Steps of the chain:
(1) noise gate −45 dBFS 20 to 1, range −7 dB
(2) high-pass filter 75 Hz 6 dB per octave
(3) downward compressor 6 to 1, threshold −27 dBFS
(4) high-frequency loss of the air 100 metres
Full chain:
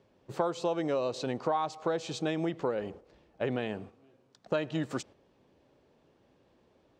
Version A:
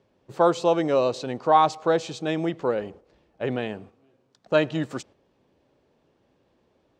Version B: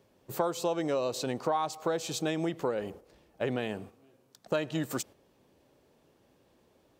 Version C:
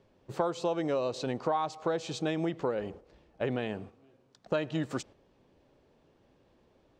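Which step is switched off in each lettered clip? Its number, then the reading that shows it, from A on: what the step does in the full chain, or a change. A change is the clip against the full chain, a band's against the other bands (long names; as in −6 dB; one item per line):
3, change in momentary loudness spread +4 LU
4, 8 kHz band +8.0 dB
2, change in momentary loudness spread +2 LU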